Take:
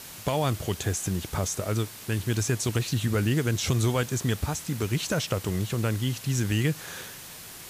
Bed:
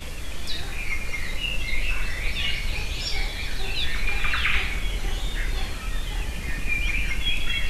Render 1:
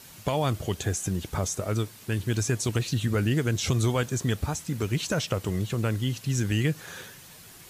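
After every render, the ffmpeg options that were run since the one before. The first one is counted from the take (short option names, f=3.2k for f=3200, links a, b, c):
-af "afftdn=nr=7:nf=-43"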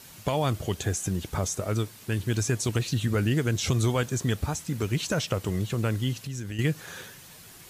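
-filter_complex "[0:a]asettb=1/sr,asplit=3[a][b][c];[a]atrim=end=6.134[d];[b]atrim=start=6.13:end=6.59,asetpts=PTS-STARTPTS,afade=t=in:d=0.004:c=qsin,afade=t=out:st=0.456:d=0.004:c=qsin,acompressor=threshold=-34dB:ratio=3:attack=3.2:release=140:knee=1:detection=peak[e];[c]atrim=start=6.586[f];[d][e]acrossfade=d=0.004:c1=hsin:c2=qsin[g];[g][f]acrossfade=d=0.004:c1=qsin:c2=hsin"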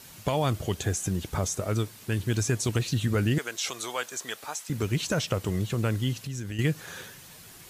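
-filter_complex "[0:a]asettb=1/sr,asplit=3[a][b][c];[a]atrim=end=3.384[d];[b]atrim=start=3.38:end=4.7,asetpts=PTS-STARTPTS,afade=t=in:d=0.004:c=qsin,afade=t=out:st=1.316:d=0.004:c=qsin,highpass=680[e];[c]atrim=start=4.696[f];[d][e]acrossfade=d=0.004:c1=hsin:c2=qsin[g];[g][f]acrossfade=d=0.004:c1=qsin:c2=hsin"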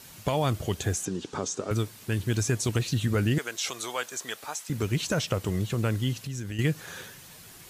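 -filter_complex "[0:a]asettb=1/sr,asplit=3[a][b][c];[a]atrim=end=1.054[d];[b]atrim=start=1.05:end=1.71,asetpts=PTS-STARTPTS,afade=t=in:d=0.004:c=qsin,afade=t=out:st=0.656:d=0.004:c=qsin,highpass=210,equalizer=f=270:t=q:w=4:g=5,equalizer=f=410:t=q:w=4:g=5,equalizer=f=630:t=q:w=4:g=-6,equalizer=f=2.1k:t=q:w=4:g=-7,lowpass=f=7.4k:w=0.5412,lowpass=f=7.4k:w=1.3066[e];[c]atrim=start=1.706[f];[d][e]acrossfade=d=0.004:c1=hsin:c2=qsin[g];[g][f]acrossfade=d=0.004:c1=qsin:c2=hsin"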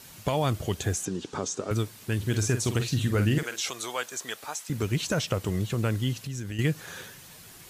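-filter_complex "[0:a]asettb=1/sr,asplit=3[a][b][c];[a]atrim=end=2.174[d];[b]atrim=start=2.17:end=3.63,asetpts=PTS-STARTPTS,afade=t=in:d=0.004:c=qsin,afade=t=out:st=1.456:d=0.004:c=qsin,asplit=2[e][f];[f]adelay=48,volume=-9dB[g];[e][g]amix=inputs=2:normalize=0,atrim=end_sample=64386[h];[c]atrim=start=3.626[i];[d][h]acrossfade=d=0.004:c1=hsin:c2=qsin[j];[j][i]acrossfade=d=0.004:c1=qsin:c2=hsin"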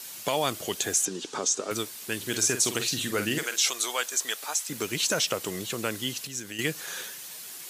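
-af "highpass=280,highshelf=f=2.6k:g=9.5"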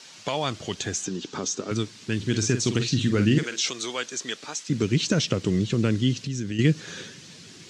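-af "lowpass=f=6.2k:w=0.5412,lowpass=f=6.2k:w=1.3066,asubboost=boost=10:cutoff=250"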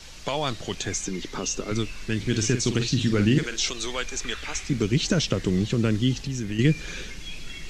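-filter_complex "[1:a]volume=-13.5dB[a];[0:a][a]amix=inputs=2:normalize=0"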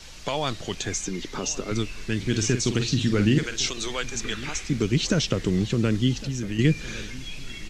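-filter_complex "[0:a]asplit=2[a][b];[b]adelay=1108,volume=-18dB,highshelf=f=4k:g=-24.9[c];[a][c]amix=inputs=2:normalize=0"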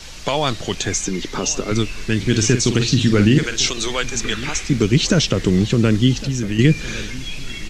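-af "volume=7.5dB,alimiter=limit=-3dB:level=0:latency=1"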